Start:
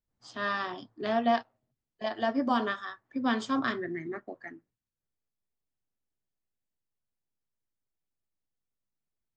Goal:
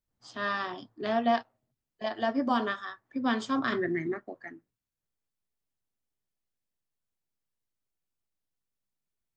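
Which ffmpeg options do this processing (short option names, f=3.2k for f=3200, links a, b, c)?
-filter_complex "[0:a]asettb=1/sr,asplit=3[a][b][c];[a]atrim=end=3.724[d];[b]atrim=start=3.72:end=4.14,asetpts=PTS-STARTPTS,afade=t=in:d=0.004:c=qsin,afade=t=out:st=0.416:d=0.004:c=qsin,acontrast=37[e];[c]atrim=start=4.136[f];[d][e]acrossfade=d=0.004:c1=hsin:c2=qsin[g];[g][f]acrossfade=d=0.004:c1=qsin:c2=hsin"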